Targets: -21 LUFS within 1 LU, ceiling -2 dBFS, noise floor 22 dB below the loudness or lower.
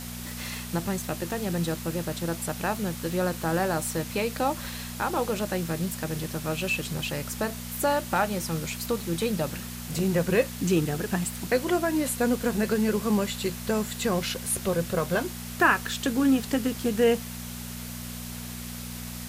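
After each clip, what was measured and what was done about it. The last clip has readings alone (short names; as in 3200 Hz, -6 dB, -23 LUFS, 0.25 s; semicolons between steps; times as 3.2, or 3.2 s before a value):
hum 60 Hz; harmonics up to 240 Hz; hum level -36 dBFS; noise floor -38 dBFS; noise floor target -50 dBFS; loudness -28.0 LUFS; peak -8.0 dBFS; loudness target -21.0 LUFS
-> de-hum 60 Hz, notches 4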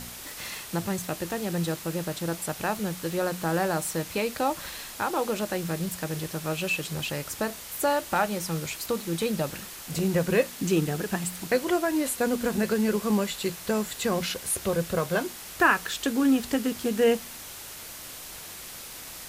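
hum none; noise floor -42 dBFS; noise floor target -50 dBFS
-> denoiser 8 dB, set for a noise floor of -42 dBFS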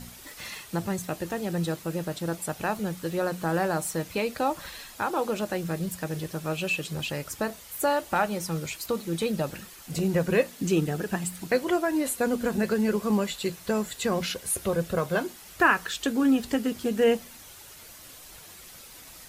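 noise floor -48 dBFS; noise floor target -50 dBFS
-> denoiser 6 dB, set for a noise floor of -48 dBFS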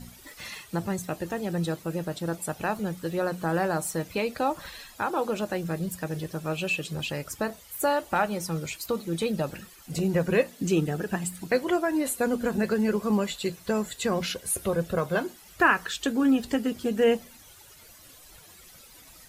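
noise floor -51 dBFS; loudness -28.0 LUFS; peak -8.0 dBFS; loudness target -21.0 LUFS
-> gain +7 dB; limiter -2 dBFS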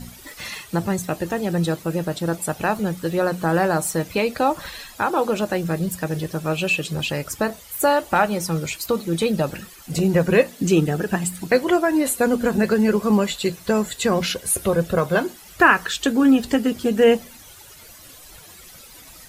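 loudness -21.0 LUFS; peak -2.0 dBFS; noise floor -44 dBFS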